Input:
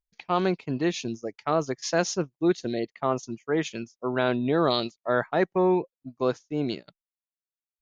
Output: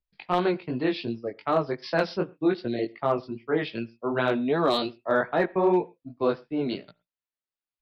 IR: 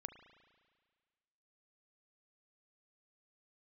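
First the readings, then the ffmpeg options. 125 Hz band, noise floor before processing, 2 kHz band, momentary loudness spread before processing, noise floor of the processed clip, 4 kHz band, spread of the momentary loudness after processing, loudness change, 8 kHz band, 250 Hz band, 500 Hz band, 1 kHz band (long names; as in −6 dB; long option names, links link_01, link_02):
−2.0 dB, below −85 dBFS, +1.0 dB, 9 LU, below −85 dBFS, −1.5 dB, 8 LU, 0.0 dB, can't be measured, 0.0 dB, +0.5 dB, +0.5 dB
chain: -filter_complex "[0:a]flanger=delay=16.5:depth=4.5:speed=2.6,acrossover=split=270|3000[link_01][link_02][link_03];[link_01]acompressor=threshold=-36dB:ratio=5[link_04];[link_04][link_02][link_03]amix=inputs=3:normalize=0,aresample=11025,aresample=44100,volume=17.5dB,asoftclip=hard,volume=-17.5dB,asplit=2[link_05][link_06];[1:a]atrim=start_sample=2205,atrim=end_sample=6174,lowpass=4500[link_07];[link_06][link_07]afir=irnorm=-1:irlink=0,volume=-2.5dB[link_08];[link_05][link_08]amix=inputs=2:normalize=0,volume=1dB"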